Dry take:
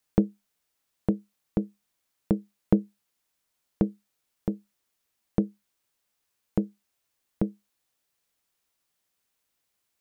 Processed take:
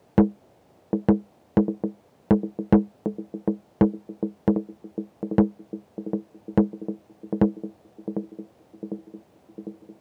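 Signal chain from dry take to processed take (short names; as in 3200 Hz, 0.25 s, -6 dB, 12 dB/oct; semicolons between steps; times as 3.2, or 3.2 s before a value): narrowing echo 0.751 s, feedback 69%, band-pass 300 Hz, level -13.5 dB; overdrive pedal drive 28 dB, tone 1100 Hz, clips at -4.5 dBFS; band noise 72–760 Hz -58 dBFS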